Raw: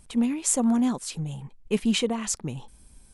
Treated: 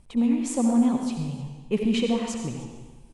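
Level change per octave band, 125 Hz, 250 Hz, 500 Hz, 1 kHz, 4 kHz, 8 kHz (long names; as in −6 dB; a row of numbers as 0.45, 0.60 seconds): +1.0, +2.5, +1.5, +1.0, −3.5, −9.0 decibels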